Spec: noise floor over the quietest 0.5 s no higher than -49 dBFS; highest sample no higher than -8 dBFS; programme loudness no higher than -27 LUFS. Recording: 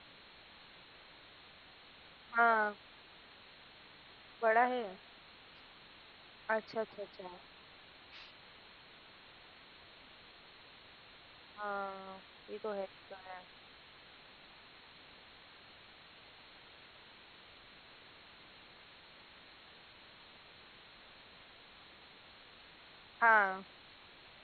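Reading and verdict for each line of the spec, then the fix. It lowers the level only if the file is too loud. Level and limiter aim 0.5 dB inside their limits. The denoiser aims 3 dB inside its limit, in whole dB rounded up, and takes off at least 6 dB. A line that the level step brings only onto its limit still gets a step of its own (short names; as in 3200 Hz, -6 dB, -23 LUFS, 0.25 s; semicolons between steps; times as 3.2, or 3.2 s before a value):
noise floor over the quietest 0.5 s -58 dBFS: OK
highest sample -15.0 dBFS: OK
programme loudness -35.0 LUFS: OK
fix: none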